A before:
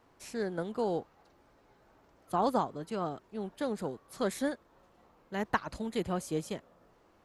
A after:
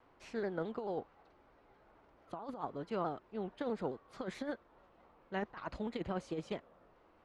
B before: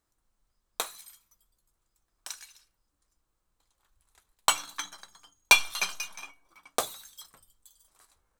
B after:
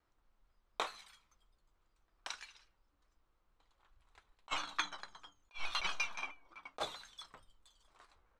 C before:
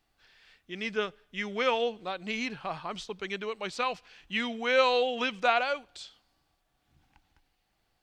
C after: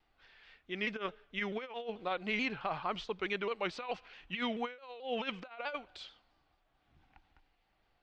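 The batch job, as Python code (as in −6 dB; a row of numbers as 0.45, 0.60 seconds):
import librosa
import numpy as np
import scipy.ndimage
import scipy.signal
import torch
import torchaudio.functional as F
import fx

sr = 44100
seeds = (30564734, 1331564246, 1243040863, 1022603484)

y = scipy.signal.sosfilt(scipy.signal.butter(2, 3100.0, 'lowpass', fs=sr, output='sos'), x)
y = fx.peak_eq(y, sr, hz=140.0, db=-4.5, octaves=2.2)
y = fx.notch(y, sr, hz=1700.0, q=30.0)
y = fx.over_compress(y, sr, threshold_db=-34.0, ratio=-0.5)
y = fx.vibrato_shape(y, sr, shape='saw_down', rate_hz=4.6, depth_cents=100.0)
y = y * librosa.db_to_amplitude(-2.5)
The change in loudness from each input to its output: −6.5, −14.0, −8.0 LU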